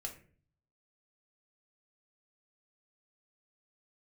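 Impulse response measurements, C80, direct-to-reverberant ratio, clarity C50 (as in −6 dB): 15.0 dB, 1.0 dB, 10.5 dB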